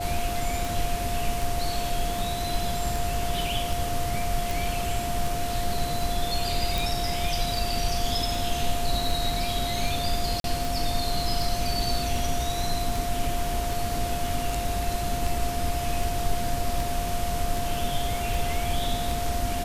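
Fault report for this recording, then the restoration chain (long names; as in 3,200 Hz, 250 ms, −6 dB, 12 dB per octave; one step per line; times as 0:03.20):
scratch tick 78 rpm
whistle 700 Hz −30 dBFS
0:04.51: click
0:06.78: click
0:10.40–0:10.44: drop-out 42 ms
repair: click removal
notch filter 700 Hz, Q 30
repair the gap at 0:10.40, 42 ms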